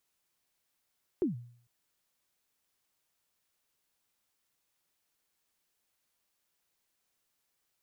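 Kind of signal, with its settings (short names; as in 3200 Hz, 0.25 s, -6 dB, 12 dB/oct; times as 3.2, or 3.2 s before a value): kick drum length 0.45 s, from 400 Hz, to 120 Hz, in 0.133 s, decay 0.56 s, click off, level -23 dB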